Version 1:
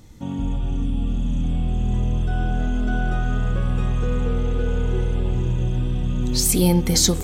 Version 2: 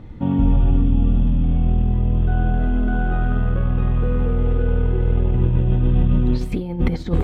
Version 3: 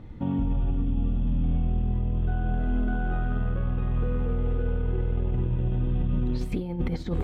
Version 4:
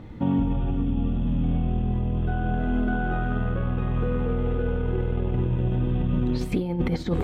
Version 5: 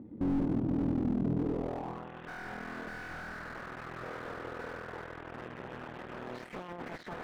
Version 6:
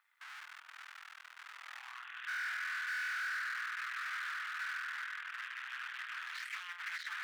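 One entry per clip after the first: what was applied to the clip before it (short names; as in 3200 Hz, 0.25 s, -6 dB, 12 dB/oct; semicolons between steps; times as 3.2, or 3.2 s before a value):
negative-ratio compressor -22 dBFS, ratio -0.5; air absorption 500 m; gain +6.5 dB
limiter -13.5 dBFS, peak gain reduction 8 dB; gain -5 dB
low shelf 81 Hz -10 dB; gain +6 dB
added harmonics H 4 -8 dB, 8 -19 dB, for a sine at -12.5 dBFS; band-pass sweep 270 Hz -> 1700 Hz, 1.37–2.11; slew limiter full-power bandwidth 11 Hz
steep high-pass 1400 Hz 36 dB/oct; gain +8.5 dB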